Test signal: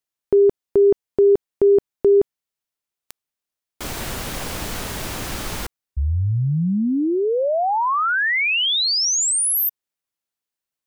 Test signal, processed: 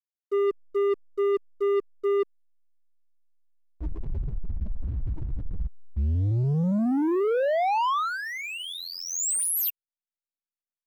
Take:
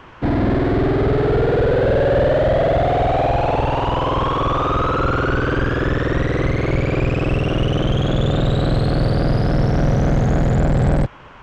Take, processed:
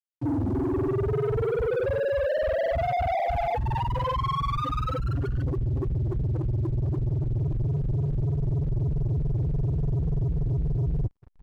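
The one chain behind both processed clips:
spectral peaks only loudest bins 2
reversed playback
downward compressor 4 to 1, threshold −33 dBFS
reversed playback
flat-topped bell 2,900 Hz −11.5 dB 2.3 octaves
slack as between gear wheels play −42 dBFS
leveller curve on the samples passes 2
level +5 dB

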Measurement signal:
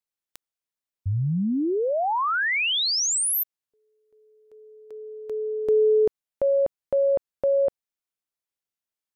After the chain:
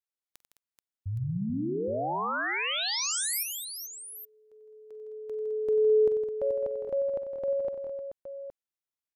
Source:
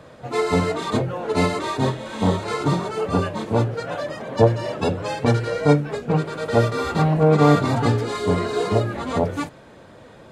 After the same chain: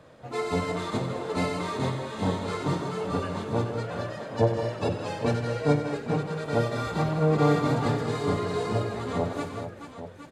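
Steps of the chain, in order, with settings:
multi-tap delay 47/93/160/211/432/817 ms −17/−11/−10/−11.5/−9.5/−11.5 dB
level −8 dB

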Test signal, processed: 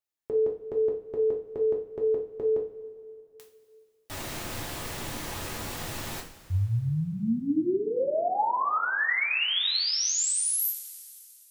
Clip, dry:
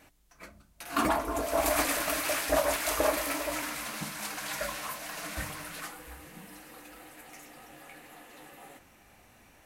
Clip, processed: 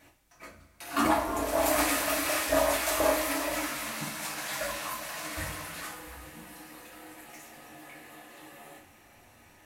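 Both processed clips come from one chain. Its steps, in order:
coupled-rooms reverb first 0.36 s, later 2.7 s, from −18 dB, DRR −2 dB
level −2.5 dB

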